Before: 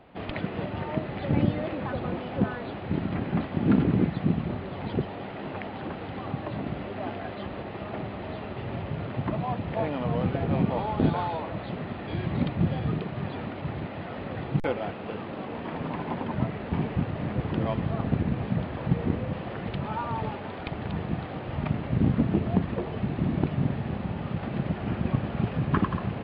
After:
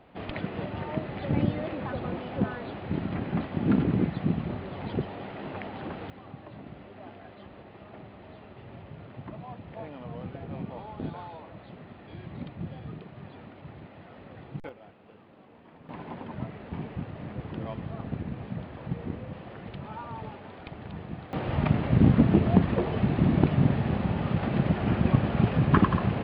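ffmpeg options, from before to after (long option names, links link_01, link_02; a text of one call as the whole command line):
ffmpeg -i in.wav -af "asetnsamples=nb_out_samples=441:pad=0,asendcmd='6.1 volume volume -12dB;14.69 volume volume -19dB;15.89 volume volume -8dB;21.33 volume volume 4dB',volume=-2dB" out.wav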